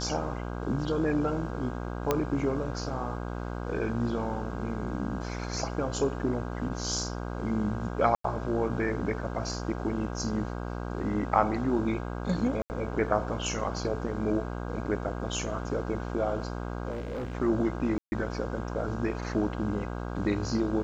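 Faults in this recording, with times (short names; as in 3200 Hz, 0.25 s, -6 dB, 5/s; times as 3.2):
buzz 60 Hz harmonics 27 -35 dBFS
2.11 pop -11 dBFS
8.15–8.24 gap 94 ms
12.62–12.7 gap 79 ms
16.9–17.33 clipped -31 dBFS
17.98–18.12 gap 0.14 s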